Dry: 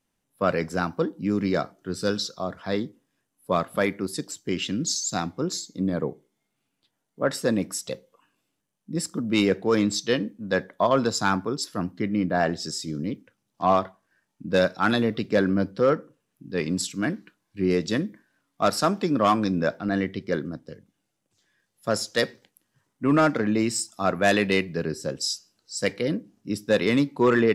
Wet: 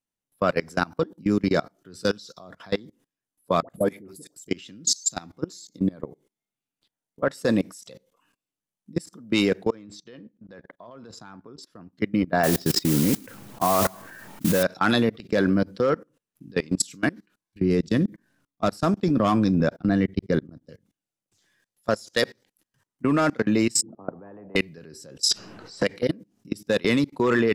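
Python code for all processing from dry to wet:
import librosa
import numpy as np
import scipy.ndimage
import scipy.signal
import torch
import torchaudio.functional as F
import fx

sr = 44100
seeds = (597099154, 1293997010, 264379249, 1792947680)

y = fx.chain(x, sr, fx.band_shelf(hz=2300.0, db=-12.0, octaves=2.9),
    fx.dispersion(late='highs', ms=78.0, hz=880.0), at=(3.62, 4.48))
y = fx.chain(y, sr, fx.lowpass(hz=1900.0, slope=6),
    fx.level_steps(step_db=16), at=(9.7, 11.93))
y = fx.chain(y, sr, fx.lowpass(hz=2000.0, slope=12),
    fx.mod_noise(seeds[0], snr_db=13),
    fx.env_flatten(amount_pct=70), at=(12.43, 14.63))
y = fx.chain(y, sr, fx.low_shelf(hz=330.0, db=11.5),
    fx.level_steps(step_db=23), at=(17.6, 20.69))
y = fx.chain(y, sr, fx.ellip_bandpass(low_hz=140.0, high_hz=500.0, order=3, stop_db=80),
    fx.spectral_comp(ratio=4.0), at=(23.82, 24.56))
y = fx.chain(y, sr, fx.high_shelf(hz=4100.0, db=-9.0),
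    fx.band_squash(depth_pct=100), at=(25.31, 25.97))
y = fx.high_shelf(y, sr, hz=3800.0, db=4.5)
y = fx.level_steps(y, sr, step_db=24)
y = y * librosa.db_to_amplitude(4.0)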